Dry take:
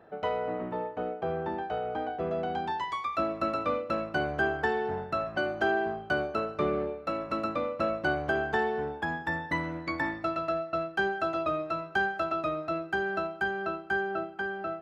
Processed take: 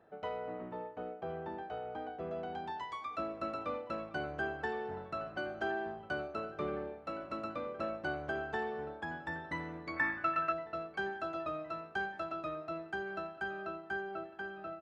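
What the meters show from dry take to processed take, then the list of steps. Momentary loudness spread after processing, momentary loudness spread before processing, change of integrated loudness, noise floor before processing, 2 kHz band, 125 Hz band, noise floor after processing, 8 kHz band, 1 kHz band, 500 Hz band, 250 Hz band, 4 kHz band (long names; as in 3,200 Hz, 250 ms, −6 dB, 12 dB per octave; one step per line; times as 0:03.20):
6 LU, 5 LU, −8.0 dB, −44 dBFS, −8.0 dB, −9.0 dB, −52 dBFS, can't be measured, −8.0 dB, −9.0 dB, −9.0 dB, −9.0 dB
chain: delay with a low-pass on its return 1,064 ms, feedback 62%, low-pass 3,500 Hz, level −18 dB
downsampling to 22,050 Hz
gain on a spectral selection 0:09.97–0:10.52, 1,000–2,800 Hz +10 dB
level −9 dB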